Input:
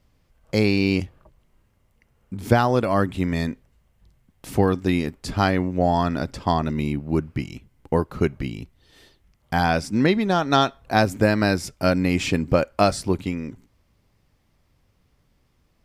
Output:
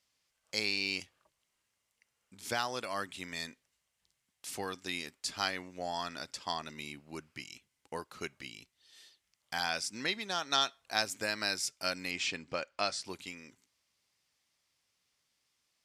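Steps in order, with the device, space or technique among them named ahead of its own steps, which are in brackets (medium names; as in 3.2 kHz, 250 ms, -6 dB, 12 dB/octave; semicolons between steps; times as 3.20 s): 12.11–13.05 s: Bessel low-pass 4.3 kHz, order 2; piezo pickup straight into a mixer (low-pass 7.5 kHz 12 dB/octave; differentiator); bass shelf 230 Hz +4.5 dB; trim +3 dB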